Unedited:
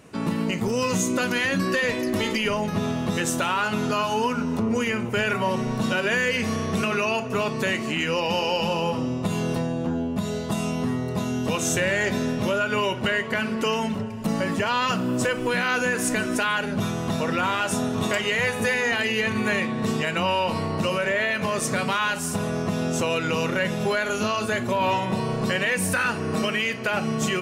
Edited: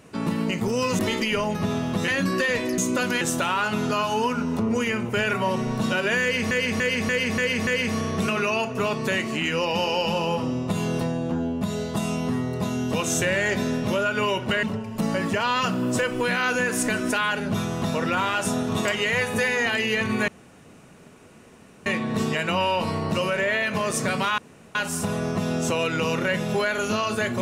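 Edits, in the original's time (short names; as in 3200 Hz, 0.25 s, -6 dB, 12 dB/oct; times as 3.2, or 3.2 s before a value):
0.99–1.42 swap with 2.12–3.21
6.22–6.51 loop, 6 plays
13.18–13.89 cut
19.54 insert room tone 1.58 s
22.06 insert room tone 0.37 s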